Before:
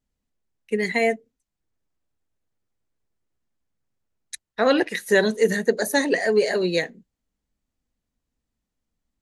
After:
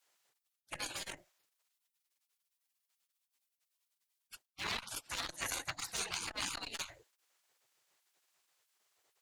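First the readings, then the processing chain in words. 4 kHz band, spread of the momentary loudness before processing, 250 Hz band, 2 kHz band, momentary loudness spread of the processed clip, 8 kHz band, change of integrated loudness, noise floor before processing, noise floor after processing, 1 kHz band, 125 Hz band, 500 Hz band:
−8.5 dB, 13 LU, −30.0 dB, −18.0 dB, 14 LU, −5.5 dB, −18.0 dB, −83 dBFS, below −85 dBFS, −15.5 dB, −19.5 dB, −33.0 dB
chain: asymmetric clip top −19 dBFS, bottom −8.5 dBFS
reversed playback
downward compressor 10 to 1, threshold −32 dBFS, peak gain reduction 17.5 dB
reversed playback
gate on every frequency bin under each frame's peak −25 dB weak
saturating transformer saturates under 1,300 Hz
level +13.5 dB

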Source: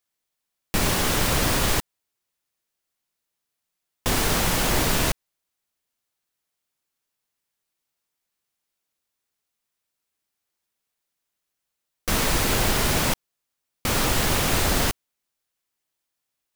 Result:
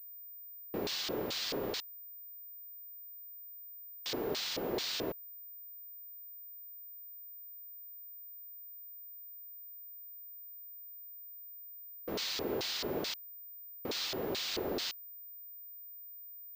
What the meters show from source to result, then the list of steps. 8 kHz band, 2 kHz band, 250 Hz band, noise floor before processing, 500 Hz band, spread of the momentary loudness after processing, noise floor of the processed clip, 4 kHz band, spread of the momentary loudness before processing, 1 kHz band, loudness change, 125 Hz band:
−19.5 dB, −17.5 dB, −13.0 dB, −82 dBFS, −8.5 dB, 11 LU, −49 dBFS, −9.5 dB, 8 LU, −18.0 dB, −17.5 dB, −23.5 dB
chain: auto-filter band-pass square 2.3 Hz 410–4,300 Hz
switching amplifier with a slow clock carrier 15,000 Hz
level −3 dB

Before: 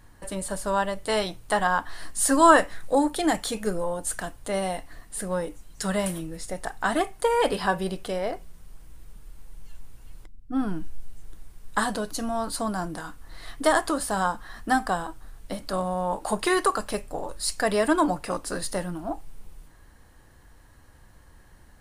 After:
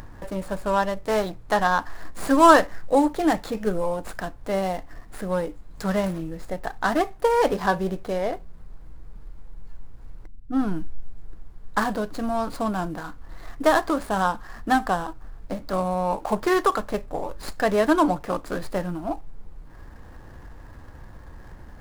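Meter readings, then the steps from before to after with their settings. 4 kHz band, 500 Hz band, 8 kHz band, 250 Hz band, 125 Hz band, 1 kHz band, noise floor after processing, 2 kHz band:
−2.5 dB, +2.5 dB, −9.0 dB, +3.0 dB, +3.0 dB, +2.5 dB, −44 dBFS, +1.0 dB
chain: running median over 15 samples
upward compression, threshold −35 dBFS
level +3 dB

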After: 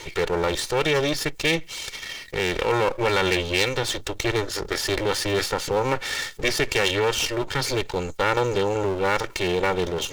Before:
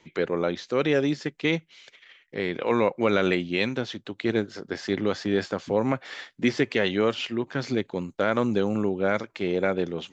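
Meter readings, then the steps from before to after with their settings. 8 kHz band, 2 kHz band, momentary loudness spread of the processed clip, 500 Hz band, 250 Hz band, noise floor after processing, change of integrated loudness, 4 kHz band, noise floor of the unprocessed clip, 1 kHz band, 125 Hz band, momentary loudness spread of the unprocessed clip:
can't be measured, +5.0 dB, 5 LU, +1.5 dB, −3.5 dB, −40 dBFS, +2.5 dB, +9.0 dB, −63 dBFS, +6.0 dB, +3.0 dB, 7 LU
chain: lower of the sound and its delayed copy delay 2.2 ms
high-shelf EQ 3,100 Hz +9 dB
envelope flattener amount 50%

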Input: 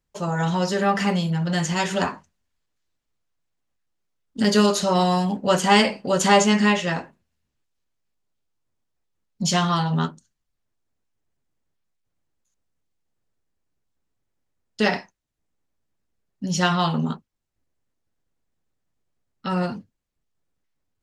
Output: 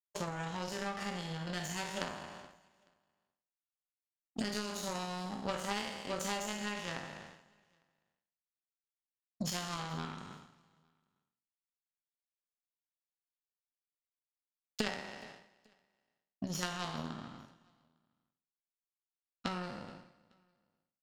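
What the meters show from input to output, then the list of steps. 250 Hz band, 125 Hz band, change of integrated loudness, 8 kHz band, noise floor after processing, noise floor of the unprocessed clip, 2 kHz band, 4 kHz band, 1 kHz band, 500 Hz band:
−19.0 dB, −18.5 dB, −18.0 dB, −14.0 dB, below −85 dBFS, −79 dBFS, −15.5 dB, −15.0 dB, −18.0 dB, −19.0 dB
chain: peak hold with a decay on every bin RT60 1.04 s
parametric band 450 Hz −2 dB 0.39 octaves
downward compressor 8 to 1, threshold −32 dBFS, peak gain reduction 21.5 dB
power curve on the samples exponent 2
on a send: repeating echo 427 ms, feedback 32%, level −24 dB
on the sum: level +5.5 dB

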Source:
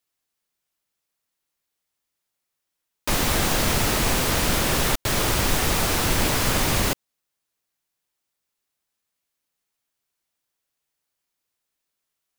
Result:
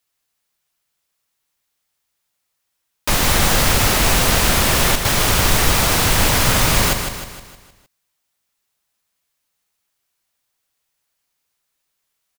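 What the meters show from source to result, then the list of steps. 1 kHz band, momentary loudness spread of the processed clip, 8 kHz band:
+6.5 dB, 7 LU, +7.0 dB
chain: parametric band 320 Hz −4.5 dB 1.4 octaves
on a send: repeating echo 155 ms, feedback 49%, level −7 dB
on the sum: level +6 dB

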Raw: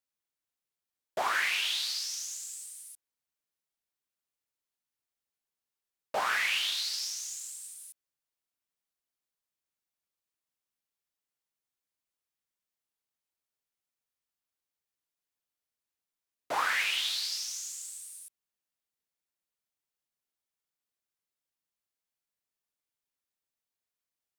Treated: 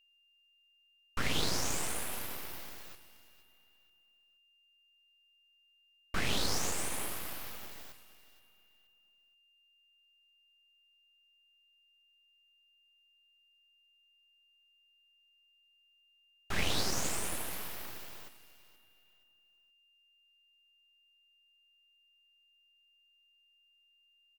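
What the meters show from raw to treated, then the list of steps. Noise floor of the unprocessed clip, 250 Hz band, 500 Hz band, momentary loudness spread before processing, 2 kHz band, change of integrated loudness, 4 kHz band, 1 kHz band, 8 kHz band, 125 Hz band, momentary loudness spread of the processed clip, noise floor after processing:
below −85 dBFS, +15.0 dB, 0.0 dB, 17 LU, −8.5 dB, −5.5 dB, −6.5 dB, −7.0 dB, −1.5 dB, can't be measured, 18 LU, −70 dBFS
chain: repeating echo 474 ms, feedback 33%, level −16 dB
full-wave rectification
steady tone 2,800 Hz −67 dBFS

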